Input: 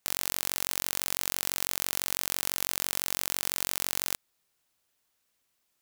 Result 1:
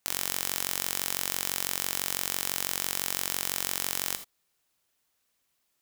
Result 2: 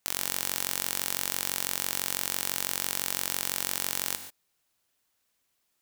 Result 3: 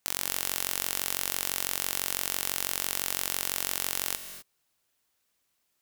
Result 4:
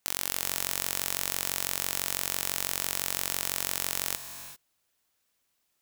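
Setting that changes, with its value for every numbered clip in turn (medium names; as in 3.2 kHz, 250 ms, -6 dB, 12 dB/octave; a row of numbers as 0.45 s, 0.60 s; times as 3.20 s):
gated-style reverb, gate: 100 ms, 160 ms, 280 ms, 420 ms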